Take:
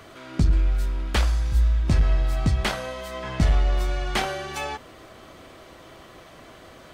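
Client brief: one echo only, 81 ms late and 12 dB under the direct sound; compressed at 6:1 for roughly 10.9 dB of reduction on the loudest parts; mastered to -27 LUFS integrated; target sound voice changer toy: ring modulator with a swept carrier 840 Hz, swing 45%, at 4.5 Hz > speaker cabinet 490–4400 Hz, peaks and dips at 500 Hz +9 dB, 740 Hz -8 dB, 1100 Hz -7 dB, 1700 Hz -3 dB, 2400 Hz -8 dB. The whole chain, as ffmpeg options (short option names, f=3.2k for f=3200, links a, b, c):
-af "acompressor=threshold=-27dB:ratio=6,aecho=1:1:81:0.251,aeval=exprs='val(0)*sin(2*PI*840*n/s+840*0.45/4.5*sin(2*PI*4.5*n/s))':c=same,highpass=490,equalizer=f=500:t=q:w=4:g=9,equalizer=f=740:t=q:w=4:g=-8,equalizer=f=1.1k:t=q:w=4:g=-7,equalizer=f=1.7k:t=q:w=4:g=-3,equalizer=f=2.4k:t=q:w=4:g=-8,lowpass=f=4.4k:w=0.5412,lowpass=f=4.4k:w=1.3066,volume=8dB"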